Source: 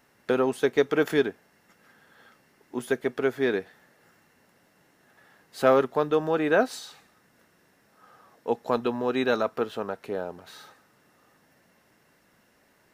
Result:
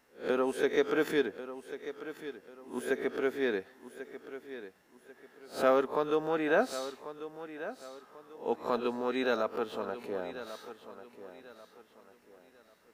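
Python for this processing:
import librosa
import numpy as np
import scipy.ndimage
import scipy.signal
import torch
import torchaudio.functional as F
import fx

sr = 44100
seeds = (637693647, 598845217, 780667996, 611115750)

p1 = fx.spec_swells(x, sr, rise_s=0.3)
p2 = fx.peak_eq(p1, sr, hz=130.0, db=-11.5, octaves=0.45)
p3 = p2 + fx.echo_feedback(p2, sr, ms=1092, feedback_pct=33, wet_db=-13.0, dry=0)
y = p3 * librosa.db_to_amplitude(-6.0)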